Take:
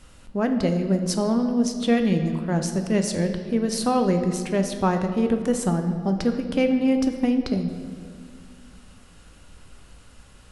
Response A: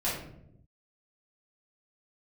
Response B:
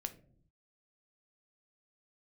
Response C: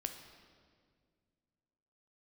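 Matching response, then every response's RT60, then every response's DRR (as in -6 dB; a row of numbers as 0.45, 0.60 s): C; 0.80, 0.60, 2.0 s; -10.0, 8.0, 5.5 dB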